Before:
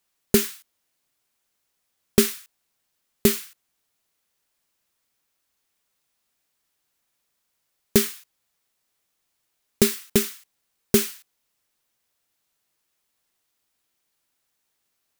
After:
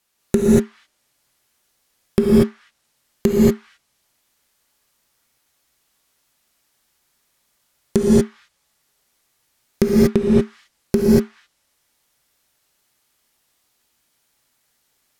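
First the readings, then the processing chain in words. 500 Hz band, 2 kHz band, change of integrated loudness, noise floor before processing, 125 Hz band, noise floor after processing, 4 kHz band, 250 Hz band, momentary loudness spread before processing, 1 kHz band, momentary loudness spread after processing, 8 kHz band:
+8.0 dB, -1.5 dB, +5.0 dB, -76 dBFS, +10.5 dB, -69 dBFS, -6.5 dB, +10.5 dB, 10 LU, +6.0 dB, 12 LU, -7.0 dB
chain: treble ducked by the level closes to 650 Hz, closed at -19 dBFS; non-linear reverb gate 0.26 s rising, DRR -3 dB; maximiser +6 dB; gain -1 dB

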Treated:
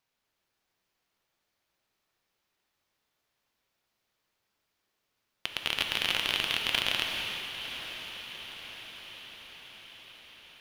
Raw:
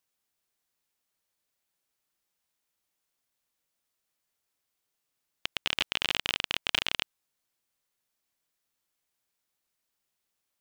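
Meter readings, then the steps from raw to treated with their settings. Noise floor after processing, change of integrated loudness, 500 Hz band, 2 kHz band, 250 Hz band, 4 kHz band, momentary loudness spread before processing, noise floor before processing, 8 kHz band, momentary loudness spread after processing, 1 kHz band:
-82 dBFS, -0.5 dB, +2.0 dB, +2.0 dB, +2.0 dB, +2.0 dB, 9 LU, -83 dBFS, +2.0 dB, 21 LU, +2.0 dB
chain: median filter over 5 samples; limiter -14.5 dBFS, peak gain reduction 4 dB; diffused feedback echo 0.904 s, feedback 59%, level -10 dB; non-linear reverb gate 0.48 s flat, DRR 1.5 dB; gain +4 dB

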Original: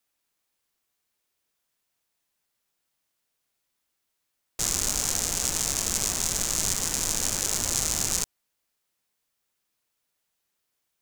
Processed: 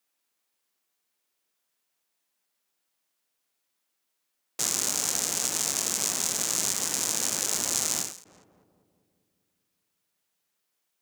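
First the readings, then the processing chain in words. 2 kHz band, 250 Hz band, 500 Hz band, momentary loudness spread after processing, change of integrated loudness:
-0.5 dB, -2.0 dB, -1.0 dB, 3 LU, -0.5 dB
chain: HPF 190 Hz 12 dB/oct; darkening echo 0.198 s, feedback 66%, low-pass 920 Hz, level -18 dB; ending taper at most 110 dB/s

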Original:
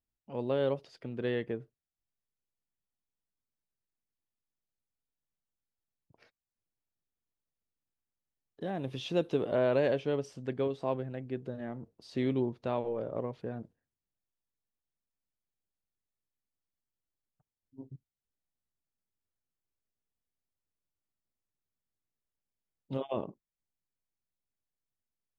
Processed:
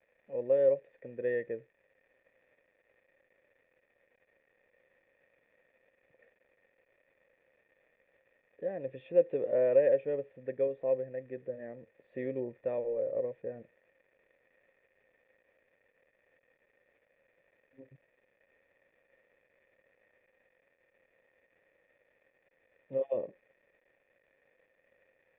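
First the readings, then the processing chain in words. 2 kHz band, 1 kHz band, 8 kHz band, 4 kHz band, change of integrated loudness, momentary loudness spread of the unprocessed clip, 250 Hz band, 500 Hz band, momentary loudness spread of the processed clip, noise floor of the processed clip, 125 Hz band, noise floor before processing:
-4.0 dB, -10.5 dB, n/a, under -20 dB, +1.5 dB, 14 LU, -9.0 dB, +3.0 dB, 17 LU, -75 dBFS, -11.5 dB, under -85 dBFS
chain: crackle 480/s -46 dBFS; vocal tract filter e; gain +8 dB

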